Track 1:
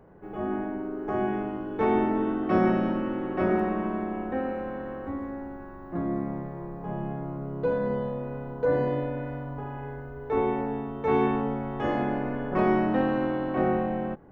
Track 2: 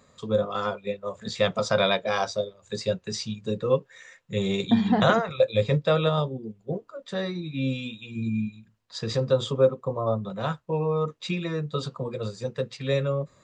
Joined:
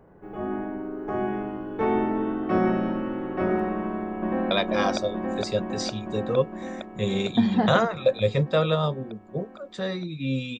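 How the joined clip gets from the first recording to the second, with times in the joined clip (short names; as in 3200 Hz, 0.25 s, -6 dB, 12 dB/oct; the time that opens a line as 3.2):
track 1
3.76–4.51 echo throw 0.46 s, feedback 80%, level -0.5 dB
4.51 switch to track 2 from 1.85 s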